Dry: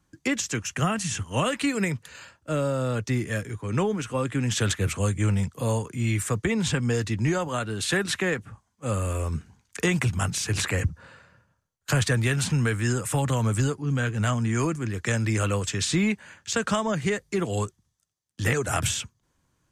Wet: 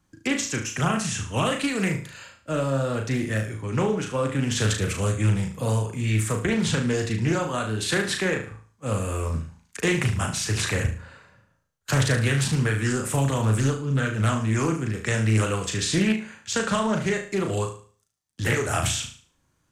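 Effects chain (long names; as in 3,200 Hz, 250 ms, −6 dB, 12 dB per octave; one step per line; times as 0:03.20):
flutter between parallel walls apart 6.3 metres, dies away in 0.43 s
highs frequency-modulated by the lows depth 0.32 ms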